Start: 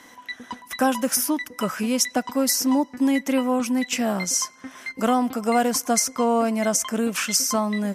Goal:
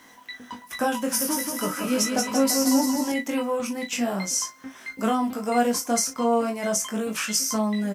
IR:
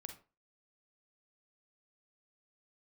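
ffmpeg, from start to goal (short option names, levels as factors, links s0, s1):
-filter_complex "[0:a]asplit=2[s0][s1];[s1]adelay=37,volume=0.282[s2];[s0][s2]amix=inputs=2:normalize=0,asettb=1/sr,asplit=3[s3][s4][s5];[s3]atrim=end=0.944[s6];[s4]atrim=start=0.94:end=3.12,asetpts=PTS-STARTPTS,afade=t=in:d=0.004:c=qsin,afade=t=out:st=2.176:d=0.004:c=qsin,aecho=1:1:180|342|487.8|619|737.1:0.631|0.398|0.251|0.158|0.1,atrim=end_sample=96138[s7];[s5]atrim=start=3.116[s8];[s6][s7]acrossfade=d=0.004:c1=hsin:c2=qsin[s9];[s9][s8]acrossfade=d=0.004:c1=qsin:c2=hsin,flanger=delay=18.5:depth=3.3:speed=0.41,acrusher=bits=9:mix=0:aa=0.000001"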